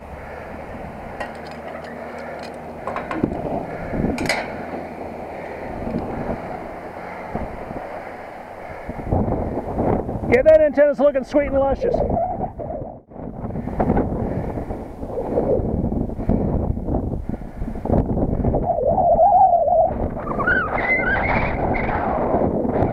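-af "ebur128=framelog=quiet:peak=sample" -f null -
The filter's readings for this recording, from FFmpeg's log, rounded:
Integrated loudness:
  I:         -21.1 LUFS
  Threshold: -31.8 LUFS
Loudness range:
  LRA:        11.7 LU
  Threshold: -41.7 LUFS
  LRA low:   -29.5 LUFS
  LRA high:  -17.8 LUFS
Sample peak:
  Peak:       -3.6 dBFS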